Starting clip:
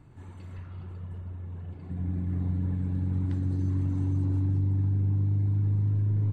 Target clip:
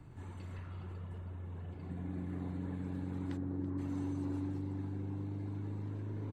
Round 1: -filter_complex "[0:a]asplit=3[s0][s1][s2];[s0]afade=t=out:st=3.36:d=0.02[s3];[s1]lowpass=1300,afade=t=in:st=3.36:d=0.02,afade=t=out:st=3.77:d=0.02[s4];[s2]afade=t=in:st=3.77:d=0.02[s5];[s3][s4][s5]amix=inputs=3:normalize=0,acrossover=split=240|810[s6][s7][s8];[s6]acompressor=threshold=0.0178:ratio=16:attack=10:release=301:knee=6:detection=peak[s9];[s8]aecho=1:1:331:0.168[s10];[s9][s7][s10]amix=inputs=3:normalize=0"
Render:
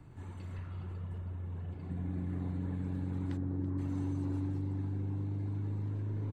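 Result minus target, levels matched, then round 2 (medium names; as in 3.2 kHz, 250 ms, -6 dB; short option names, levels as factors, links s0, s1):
compression: peak gain reduction -6 dB
-filter_complex "[0:a]asplit=3[s0][s1][s2];[s0]afade=t=out:st=3.36:d=0.02[s3];[s1]lowpass=1300,afade=t=in:st=3.36:d=0.02,afade=t=out:st=3.77:d=0.02[s4];[s2]afade=t=in:st=3.77:d=0.02[s5];[s3][s4][s5]amix=inputs=3:normalize=0,acrossover=split=240|810[s6][s7][s8];[s6]acompressor=threshold=0.00841:ratio=16:attack=10:release=301:knee=6:detection=peak[s9];[s8]aecho=1:1:331:0.168[s10];[s9][s7][s10]amix=inputs=3:normalize=0"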